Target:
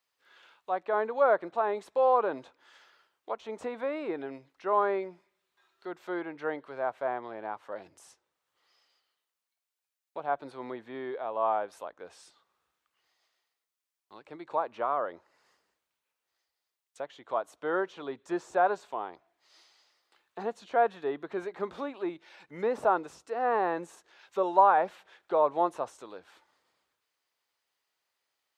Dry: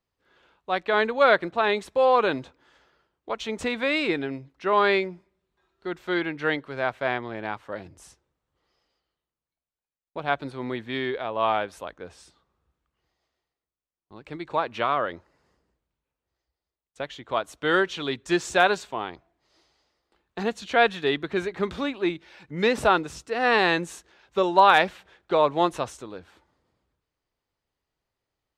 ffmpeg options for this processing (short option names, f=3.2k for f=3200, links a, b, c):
-filter_complex "[0:a]highpass=f=490:p=1,tiltshelf=f=650:g=-6,acrossover=split=1000[a][b];[b]alimiter=level_in=22dB:limit=-24dB:level=0:latency=1:release=392,volume=-22dB[c];[a][c]amix=inputs=2:normalize=0"